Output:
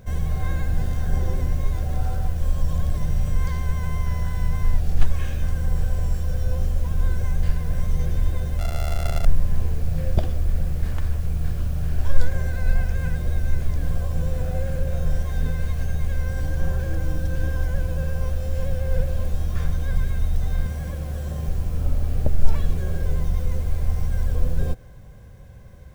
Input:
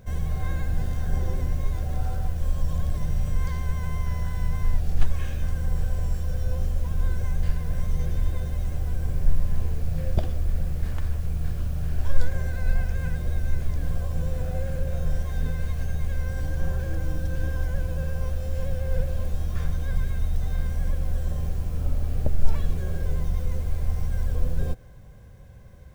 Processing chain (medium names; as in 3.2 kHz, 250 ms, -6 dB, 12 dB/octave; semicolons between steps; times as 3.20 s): 8.59–9.25 s: sorted samples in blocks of 64 samples; 20.66–21.48 s: high-pass 67 Hz; trim +3 dB